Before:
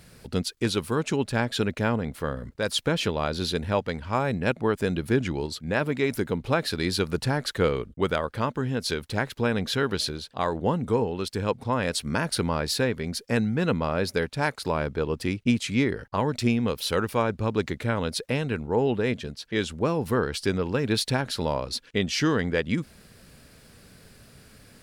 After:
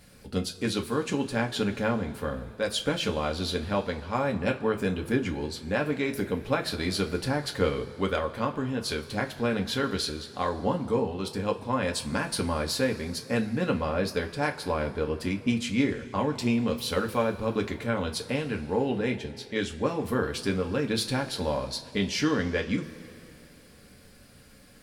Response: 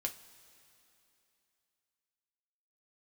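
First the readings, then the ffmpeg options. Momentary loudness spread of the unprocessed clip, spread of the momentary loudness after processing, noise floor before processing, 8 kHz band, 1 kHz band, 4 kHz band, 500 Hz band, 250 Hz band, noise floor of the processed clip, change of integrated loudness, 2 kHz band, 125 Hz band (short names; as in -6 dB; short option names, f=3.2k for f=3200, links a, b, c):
4 LU, 5 LU, -53 dBFS, -2.0 dB, -2.0 dB, -2.5 dB, -2.0 dB, -1.5 dB, -53 dBFS, -2.0 dB, -2.5 dB, -4.0 dB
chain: -filter_complex "[1:a]atrim=start_sample=2205[a];[0:a][a]afir=irnorm=-1:irlink=0,volume=-2.5dB"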